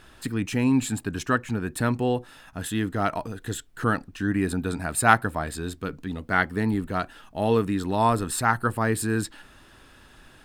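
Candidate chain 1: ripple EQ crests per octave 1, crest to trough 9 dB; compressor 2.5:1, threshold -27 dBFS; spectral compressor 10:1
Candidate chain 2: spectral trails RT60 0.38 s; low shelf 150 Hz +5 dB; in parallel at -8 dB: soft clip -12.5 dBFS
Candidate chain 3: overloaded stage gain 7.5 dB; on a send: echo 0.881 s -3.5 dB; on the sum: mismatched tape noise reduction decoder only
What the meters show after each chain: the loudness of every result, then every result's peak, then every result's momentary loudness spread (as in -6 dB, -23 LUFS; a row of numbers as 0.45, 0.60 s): -31.0, -21.5, -25.0 LUFS; -11.5, -1.0, -6.5 dBFS; 5, 9, 8 LU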